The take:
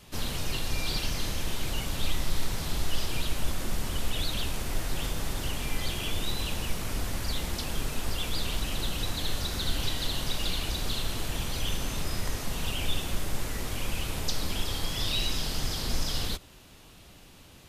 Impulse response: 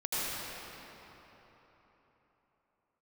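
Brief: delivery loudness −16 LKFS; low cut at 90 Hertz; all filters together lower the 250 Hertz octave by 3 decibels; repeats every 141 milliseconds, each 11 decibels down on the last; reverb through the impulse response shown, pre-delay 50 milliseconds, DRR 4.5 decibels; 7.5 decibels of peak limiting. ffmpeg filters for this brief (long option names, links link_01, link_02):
-filter_complex "[0:a]highpass=90,equalizer=frequency=250:width_type=o:gain=-4,alimiter=level_in=2.5dB:limit=-24dB:level=0:latency=1,volume=-2.5dB,aecho=1:1:141|282|423:0.282|0.0789|0.0221,asplit=2[link_01][link_02];[1:a]atrim=start_sample=2205,adelay=50[link_03];[link_02][link_03]afir=irnorm=-1:irlink=0,volume=-13dB[link_04];[link_01][link_04]amix=inputs=2:normalize=0,volume=18dB"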